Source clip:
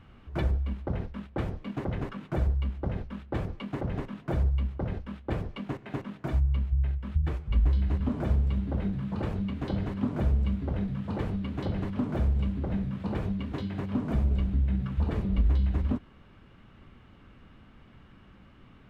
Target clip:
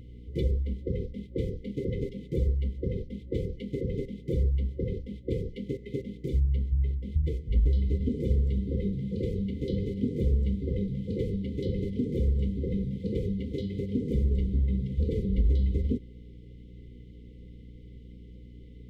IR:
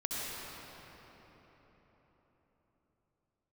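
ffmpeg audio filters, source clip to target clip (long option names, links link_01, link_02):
-af "superequalizer=7b=2.24:11b=1.41:12b=0.316,afftfilt=real='re*(1-between(b*sr/4096,540,2000))':imag='im*(1-between(b*sr/4096,540,2000))':win_size=4096:overlap=0.75,aeval=exprs='val(0)+0.00501*(sin(2*PI*60*n/s)+sin(2*PI*2*60*n/s)/2+sin(2*PI*3*60*n/s)/3+sin(2*PI*4*60*n/s)/4+sin(2*PI*5*60*n/s)/5)':channel_layout=same"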